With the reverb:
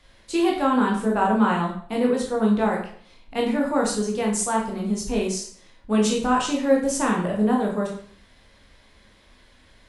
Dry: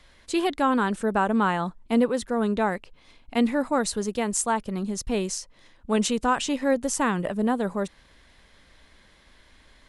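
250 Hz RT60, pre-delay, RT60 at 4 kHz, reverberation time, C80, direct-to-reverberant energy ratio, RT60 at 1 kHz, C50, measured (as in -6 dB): 0.55 s, 13 ms, 0.45 s, 0.55 s, 9.0 dB, -2.0 dB, 0.50 s, 5.5 dB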